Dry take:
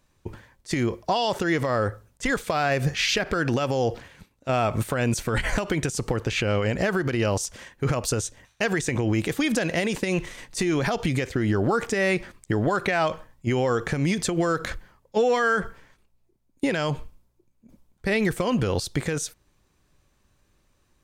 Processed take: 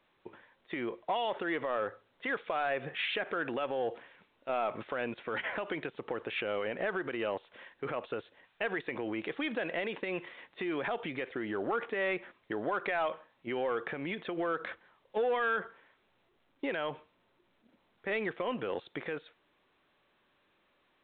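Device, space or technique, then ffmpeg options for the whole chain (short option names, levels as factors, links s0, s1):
telephone: -af "highpass=360,lowpass=3400,asoftclip=type=tanh:threshold=0.168,volume=0.473" -ar 8000 -c:a pcm_alaw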